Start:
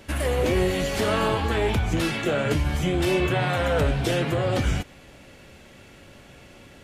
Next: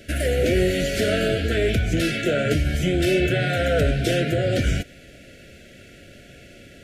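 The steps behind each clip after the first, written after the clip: Chebyshev band-stop 700–1400 Hz, order 4; gain +3 dB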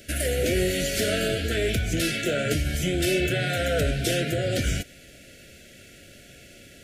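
high shelf 4300 Hz +11.5 dB; gain -4.5 dB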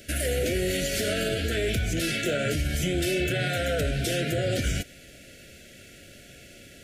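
limiter -17.5 dBFS, peak gain reduction 5 dB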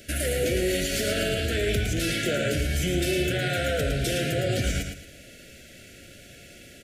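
feedback echo 0.111 s, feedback 29%, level -6 dB

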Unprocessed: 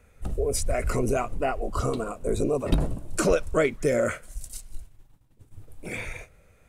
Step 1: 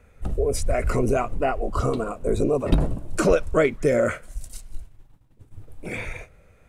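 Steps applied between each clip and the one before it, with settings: high shelf 4200 Hz -7.5 dB; gain +3.5 dB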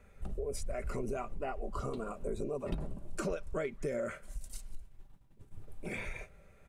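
comb 5.1 ms, depth 36%; compressor 3:1, threshold -31 dBFS, peak gain reduction 15 dB; gain -5.5 dB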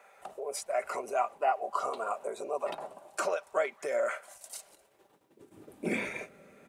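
high-pass sweep 760 Hz -> 250 Hz, 4.34–5.84; gain +6.5 dB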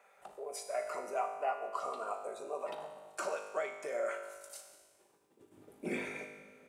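resonator 51 Hz, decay 1.3 s, harmonics all, mix 80%; gain +4.5 dB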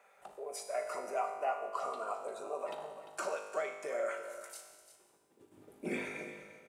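echo 0.347 s -12.5 dB

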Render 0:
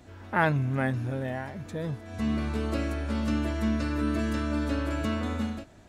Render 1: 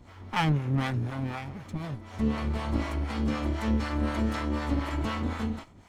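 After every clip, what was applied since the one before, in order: minimum comb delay 0.93 ms; high shelf 6100 Hz -5 dB; harmonic tremolo 4 Hz, depth 70%, crossover 560 Hz; gain +4 dB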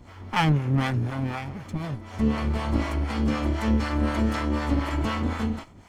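notch 3800 Hz, Q 17; gain +4 dB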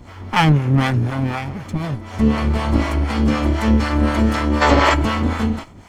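spectral gain 4.62–4.94, 350–8100 Hz +11 dB; gain +7.5 dB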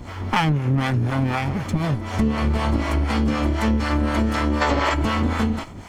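compressor, threshold -22 dBFS, peak gain reduction 13 dB; gain +4.5 dB

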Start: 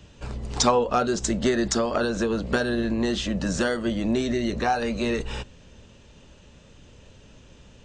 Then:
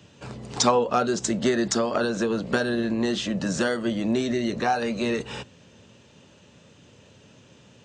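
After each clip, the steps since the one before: HPF 100 Hz 24 dB/oct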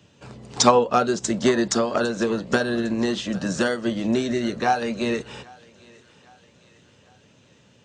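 thinning echo 0.805 s, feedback 55%, high-pass 540 Hz, level -18 dB; upward expander 1.5:1, over -34 dBFS; gain +5.5 dB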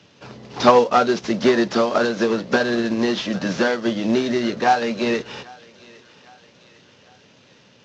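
CVSD 32 kbps; HPF 200 Hz 6 dB/oct; gain +5 dB

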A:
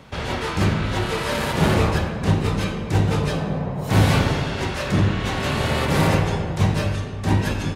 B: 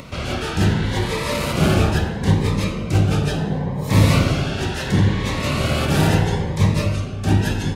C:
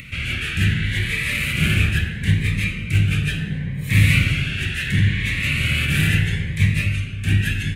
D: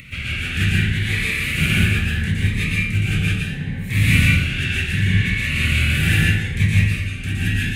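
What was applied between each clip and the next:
de-hum 56.45 Hz, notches 27; upward compressor, threshold -33 dBFS; cascading phaser rising 0.73 Hz; gain +3 dB
EQ curve 130 Hz 0 dB, 930 Hz -25 dB, 1700 Hz +4 dB, 2400 Hz +10 dB, 5200 Hz -10 dB, 8700 Hz +1 dB
tremolo triangle 2 Hz, depth 45%; plate-style reverb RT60 0.56 s, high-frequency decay 0.75×, pre-delay 0.105 s, DRR -3 dB; gain -1 dB

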